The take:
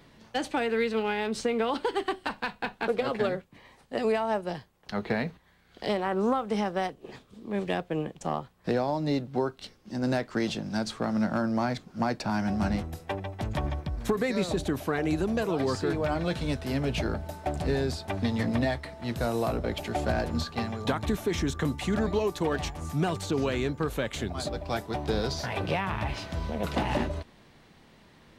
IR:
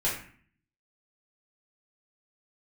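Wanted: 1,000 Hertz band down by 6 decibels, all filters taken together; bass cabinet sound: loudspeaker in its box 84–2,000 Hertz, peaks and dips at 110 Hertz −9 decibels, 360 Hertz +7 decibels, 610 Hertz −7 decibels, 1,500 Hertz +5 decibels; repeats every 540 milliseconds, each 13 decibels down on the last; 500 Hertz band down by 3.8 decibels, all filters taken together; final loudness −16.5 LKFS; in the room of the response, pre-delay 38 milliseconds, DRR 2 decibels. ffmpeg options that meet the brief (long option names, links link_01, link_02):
-filter_complex "[0:a]equalizer=frequency=500:width_type=o:gain=-5.5,equalizer=frequency=1000:width_type=o:gain=-5.5,aecho=1:1:540|1080|1620:0.224|0.0493|0.0108,asplit=2[link_01][link_02];[1:a]atrim=start_sample=2205,adelay=38[link_03];[link_02][link_03]afir=irnorm=-1:irlink=0,volume=-11dB[link_04];[link_01][link_04]amix=inputs=2:normalize=0,highpass=frequency=84:width=0.5412,highpass=frequency=84:width=1.3066,equalizer=frequency=110:width_type=q:width=4:gain=-9,equalizer=frequency=360:width_type=q:width=4:gain=7,equalizer=frequency=610:width_type=q:width=4:gain=-7,equalizer=frequency=1500:width_type=q:width=4:gain=5,lowpass=frequency=2000:width=0.5412,lowpass=frequency=2000:width=1.3066,volume=13.5dB"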